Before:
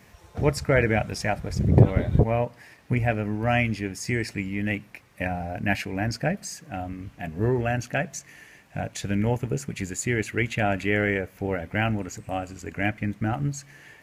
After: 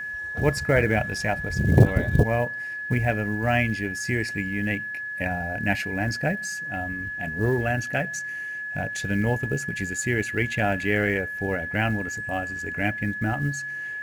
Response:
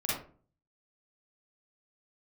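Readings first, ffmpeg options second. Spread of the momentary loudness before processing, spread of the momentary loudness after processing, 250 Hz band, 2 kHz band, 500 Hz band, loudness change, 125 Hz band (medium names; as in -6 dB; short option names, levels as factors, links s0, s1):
12 LU, 8 LU, 0.0 dB, +5.5 dB, 0.0 dB, +1.0 dB, 0.0 dB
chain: -af "acrusher=bits=8:mode=log:mix=0:aa=0.000001,aeval=exprs='val(0)+0.0316*sin(2*PI*1700*n/s)':c=same"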